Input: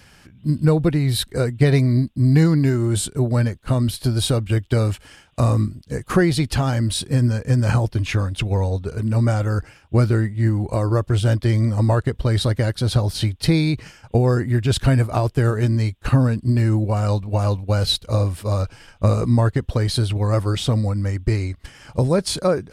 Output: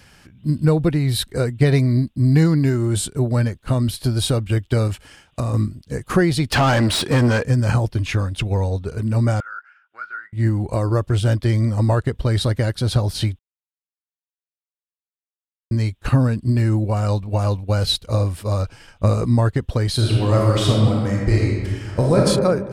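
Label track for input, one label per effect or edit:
4.870000	5.540000	downward compressor, threshold −18 dBFS
6.520000	7.450000	mid-hump overdrive drive 25 dB, tone 2,600 Hz, clips at −8 dBFS
9.400000	10.330000	four-pole ladder band-pass 1,500 Hz, resonance 85%
13.390000	15.710000	silence
19.940000	22.210000	thrown reverb, RT60 1.6 s, DRR −2.5 dB

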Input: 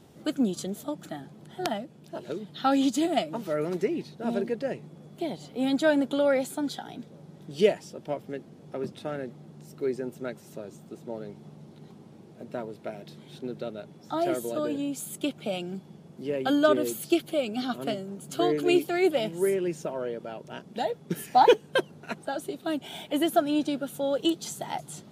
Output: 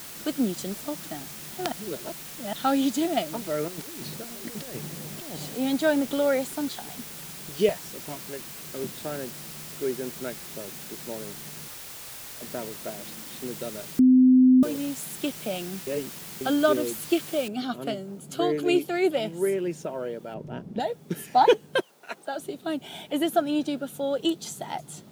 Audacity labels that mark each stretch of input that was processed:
1.720000	2.530000	reverse
3.680000	5.550000	compressor whose output falls as the input rises −40 dBFS
6.690000	8.860000	notch on a step sequencer 10 Hz 210–4,800 Hz
10.200000	10.710000	high shelf with overshoot 4,900 Hz −9 dB, Q 1.5
11.680000	12.420000	Chebyshev band-stop filter 130–480 Hz, order 4
12.990000	13.400000	comb filter 3.8 ms, depth 70%
13.990000	14.630000	beep over 256 Hz −12.5 dBFS
15.870000	16.410000	reverse
17.480000	17.480000	noise floor change −41 dB −64 dB
20.340000	20.800000	spectral tilt −3.5 dB per octave
21.800000	22.380000	high-pass filter 930 Hz → 260 Hz

